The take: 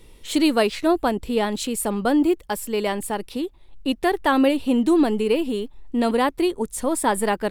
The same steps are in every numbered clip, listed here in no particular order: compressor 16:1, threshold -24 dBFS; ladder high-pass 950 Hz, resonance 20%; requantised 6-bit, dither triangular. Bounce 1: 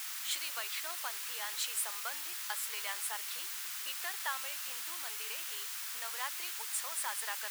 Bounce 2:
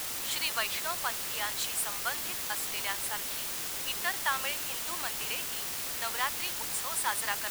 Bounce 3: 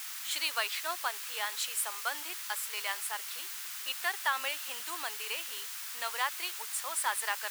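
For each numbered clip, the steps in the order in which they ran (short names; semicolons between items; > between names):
compressor > requantised > ladder high-pass; ladder high-pass > compressor > requantised; requantised > ladder high-pass > compressor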